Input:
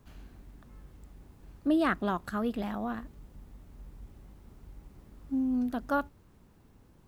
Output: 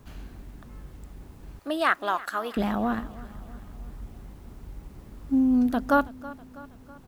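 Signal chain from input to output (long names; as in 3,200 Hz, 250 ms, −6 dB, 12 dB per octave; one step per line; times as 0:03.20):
0:01.59–0:02.57: high-pass filter 700 Hz 12 dB per octave
repeating echo 324 ms, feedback 55%, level −19 dB
level +8 dB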